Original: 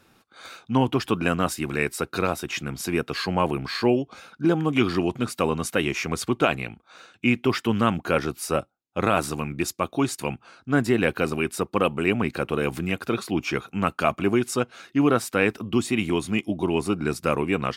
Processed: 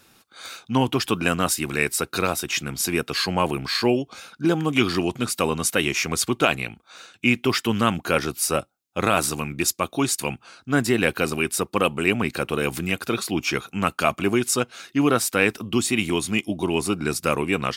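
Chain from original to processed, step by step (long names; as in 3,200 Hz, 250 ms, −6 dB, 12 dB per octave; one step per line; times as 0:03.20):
high-shelf EQ 3,000 Hz +10.5 dB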